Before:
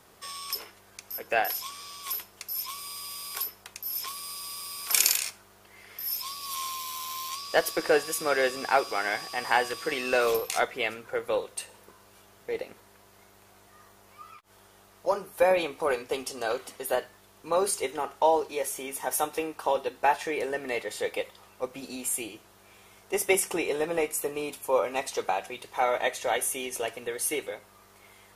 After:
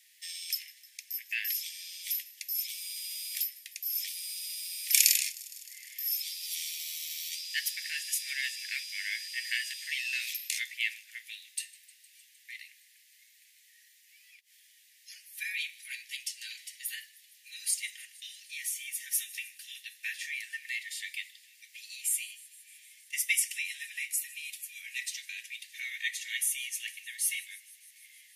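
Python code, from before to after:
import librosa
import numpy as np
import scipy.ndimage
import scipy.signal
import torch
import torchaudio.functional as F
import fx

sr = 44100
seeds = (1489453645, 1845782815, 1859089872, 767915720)

p1 = scipy.signal.sosfilt(scipy.signal.butter(16, 1800.0, 'highpass', fs=sr, output='sos'), x)
y = p1 + fx.echo_wet_highpass(p1, sr, ms=154, feedback_pct=79, hz=3600.0, wet_db=-21.0, dry=0)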